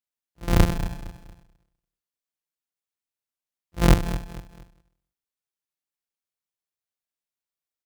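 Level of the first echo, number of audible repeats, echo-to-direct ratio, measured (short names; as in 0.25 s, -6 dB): -14.0 dB, 3, -13.5 dB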